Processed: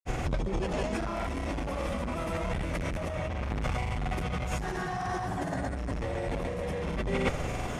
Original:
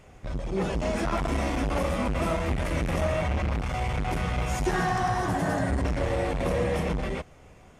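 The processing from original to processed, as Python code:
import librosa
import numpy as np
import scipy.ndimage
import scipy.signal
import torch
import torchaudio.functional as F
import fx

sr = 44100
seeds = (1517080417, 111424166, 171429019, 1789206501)

y = fx.granulator(x, sr, seeds[0], grain_ms=100.0, per_s=20.0, spray_ms=100.0, spread_st=0)
y = fx.over_compress(y, sr, threshold_db=-40.0, ratio=-1.0)
y = y * 10.0 ** (8.5 / 20.0)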